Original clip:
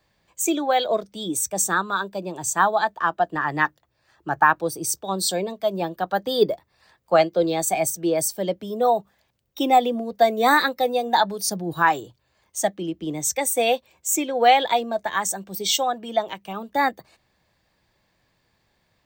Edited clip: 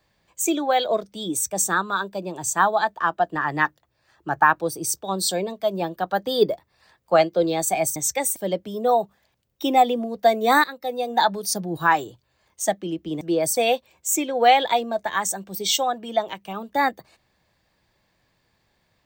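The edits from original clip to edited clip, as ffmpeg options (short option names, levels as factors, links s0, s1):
-filter_complex "[0:a]asplit=6[s0][s1][s2][s3][s4][s5];[s0]atrim=end=7.962[s6];[s1]atrim=start=13.168:end=13.572[s7];[s2]atrim=start=8.318:end=10.6,asetpts=PTS-STARTPTS,afade=t=out:st=2.278:d=0.004:c=hsin:silence=0.133352[s8];[s3]atrim=start=10.6:end=13.172,asetpts=PTS-STARTPTS,afade=t=in:d=0.59:silence=0.133352[s9];[s4]atrim=start=7.958:end=8.322[s10];[s5]atrim=start=13.568[s11];[s6][s7]acrossfade=d=0.004:c1=hsin:c2=hsin[s12];[s8][s9]concat=n=2:v=0:a=1[s13];[s12][s13]acrossfade=d=0.004:c1=hsin:c2=hsin[s14];[s14][s10]acrossfade=d=0.004:c1=hsin:c2=hsin[s15];[s15][s11]acrossfade=d=0.004:c1=hsin:c2=hsin"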